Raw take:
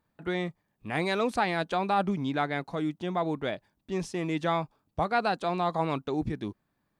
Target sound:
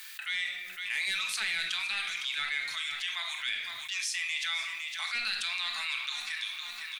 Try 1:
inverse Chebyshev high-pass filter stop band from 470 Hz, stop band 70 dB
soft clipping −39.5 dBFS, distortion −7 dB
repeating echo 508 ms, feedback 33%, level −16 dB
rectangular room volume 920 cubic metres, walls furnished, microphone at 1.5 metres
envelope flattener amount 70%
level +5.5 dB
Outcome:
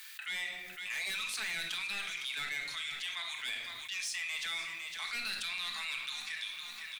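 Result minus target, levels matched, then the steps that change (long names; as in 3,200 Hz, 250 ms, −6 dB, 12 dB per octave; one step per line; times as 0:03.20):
soft clipping: distortion +10 dB
change: soft clipping −28.5 dBFS, distortion −17 dB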